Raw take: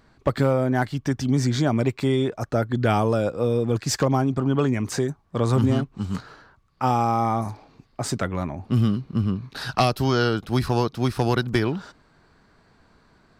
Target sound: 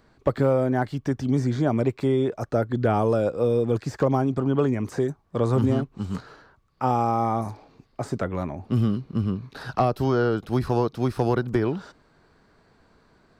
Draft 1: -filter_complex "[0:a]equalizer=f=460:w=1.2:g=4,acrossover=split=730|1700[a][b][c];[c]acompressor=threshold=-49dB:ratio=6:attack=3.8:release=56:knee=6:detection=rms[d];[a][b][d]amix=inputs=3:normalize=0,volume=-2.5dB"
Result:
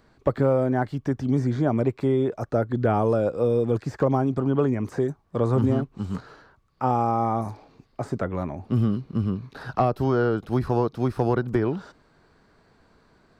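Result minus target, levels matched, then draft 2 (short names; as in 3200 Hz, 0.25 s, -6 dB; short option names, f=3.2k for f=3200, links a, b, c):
compressor: peak gain reduction +6 dB
-filter_complex "[0:a]equalizer=f=460:w=1.2:g=4,acrossover=split=730|1700[a][b][c];[c]acompressor=threshold=-41.5dB:ratio=6:attack=3.8:release=56:knee=6:detection=rms[d];[a][b][d]amix=inputs=3:normalize=0,volume=-2.5dB"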